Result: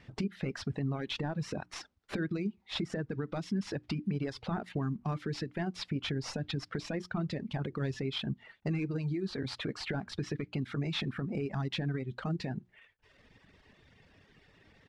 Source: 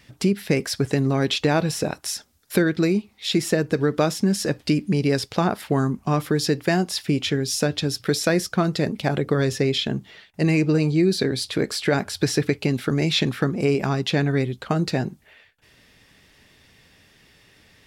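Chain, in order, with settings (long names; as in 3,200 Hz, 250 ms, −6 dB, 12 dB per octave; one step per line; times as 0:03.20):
variable-slope delta modulation 64 kbit/s
head-to-tape spacing loss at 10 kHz 25 dB
downward compressor 5 to 1, threshold −25 dBFS, peak gain reduction 9.5 dB
dynamic equaliser 500 Hz, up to −6 dB, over −41 dBFS, Q 0.81
mains-hum notches 60/120/180/240/300/360 Hz
tempo change 1.2×
brickwall limiter −24 dBFS, peak gain reduction 6 dB
reverb reduction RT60 1.1 s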